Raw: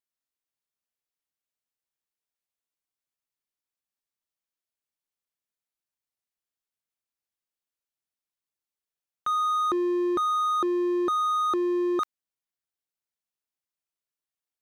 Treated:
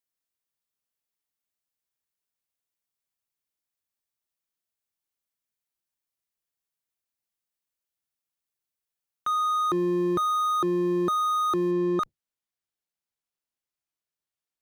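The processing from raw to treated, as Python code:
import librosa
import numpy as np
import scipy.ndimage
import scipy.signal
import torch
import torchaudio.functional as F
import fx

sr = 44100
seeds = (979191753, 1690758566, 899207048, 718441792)

y = fx.octave_divider(x, sr, octaves=1, level_db=-4.0)
y = fx.high_shelf(y, sr, hz=9000.0, db=fx.steps((0.0, 5.0), (9.69, 10.0), (11.7, -3.0)))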